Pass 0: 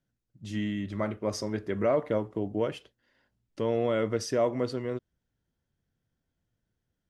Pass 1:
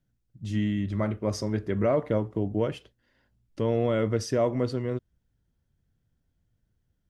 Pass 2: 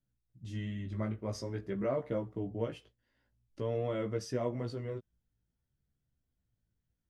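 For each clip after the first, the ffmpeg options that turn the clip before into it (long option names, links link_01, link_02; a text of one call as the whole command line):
ffmpeg -i in.wav -af "lowshelf=frequency=160:gain=11.5" out.wav
ffmpeg -i in.wav -af "flanger=delay=15:depth=3.2:speed=0.5,volume=-6dB" out.wav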